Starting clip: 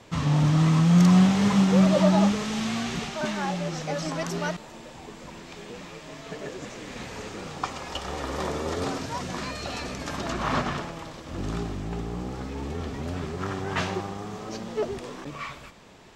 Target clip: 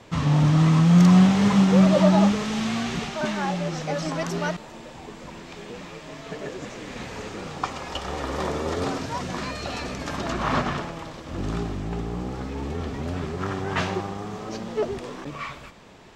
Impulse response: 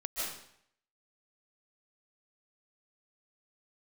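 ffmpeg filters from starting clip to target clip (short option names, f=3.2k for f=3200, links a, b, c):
-af "highshelf=f=5.1k:g=-4.5,volume=2.5dB"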